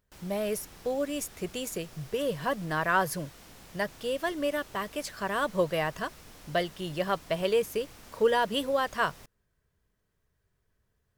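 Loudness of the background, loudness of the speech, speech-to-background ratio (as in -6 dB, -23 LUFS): -50.5 LUFS, -30.5 LUFS, 20.0 dB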